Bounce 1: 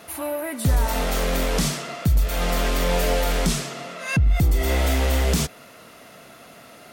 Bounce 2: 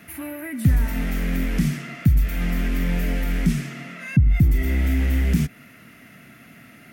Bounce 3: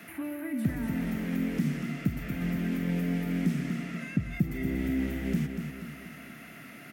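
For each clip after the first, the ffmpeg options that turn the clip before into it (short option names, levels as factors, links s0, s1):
-filter_complex "[0:a]equalizer=f=125:t=o:w=1:g=5,equalizer=f=250:t=o:w=1:g=6,equalizer=f=500:t=o:w=1:g=-11,equalizer=f=1000:t=o:w=1:g=-10,equalizer=f=2000:t=o:w=1:g=8,equalizer=f=4000:t=o:w=1:g=-9,equalizer=f=8000:t=o:w=1:g=-7,acrossover=split=490[s0][s1];[s1]acompressor=threshold=0.02:ratio=3[s2];[s0][s2]amix=inputs=2:normalize=0"
-filter_complex "[0:a]highpass=170,acrossover=split=390|2900[s0][s1][s2];[s0]acompressor=threshold=0.0562:ratio=4[s3];[s1]acompressor=threshold=0.00562:ratio=4[s4];[s2]acompressor=threshold=0.002:ratio=4[s5];[s3][s4][s5]amix=inputs=3:normalize=0,aecho=1:1:240|480|720|960|1200|1440:0.447|0.223|0.112|0.0558|0.0279|0.014"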